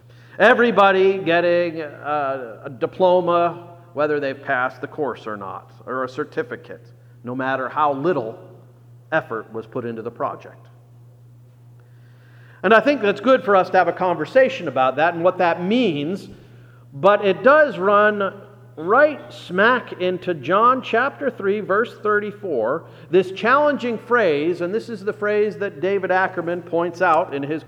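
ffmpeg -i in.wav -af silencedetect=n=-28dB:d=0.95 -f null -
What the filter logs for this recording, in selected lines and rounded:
silence_start: 10.48
silence_end: 12.64 | silence_duration: 2.16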